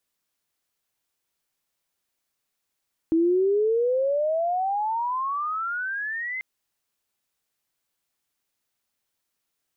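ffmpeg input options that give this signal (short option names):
-f lavfi -i "aevalsrc='pow(10,(-17-11*t/3.29)/20)*sin(2*PI*320*3.29/(32.5*log(2)/12)*(exp(32.5*log(2)/12*t/3.29)-1))':d=3.29:s=44100"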